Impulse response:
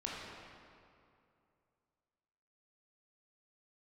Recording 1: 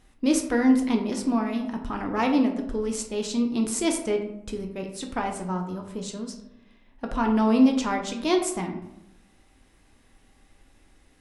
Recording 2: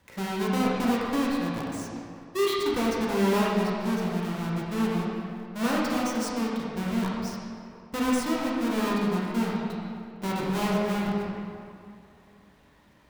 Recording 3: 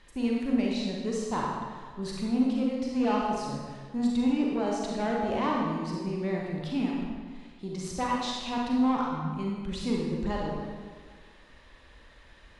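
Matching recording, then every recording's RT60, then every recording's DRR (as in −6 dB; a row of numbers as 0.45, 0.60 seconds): 2; 0.85, 2.5, 1.6 seconds; 2.5, −5.0, −3.0 decibels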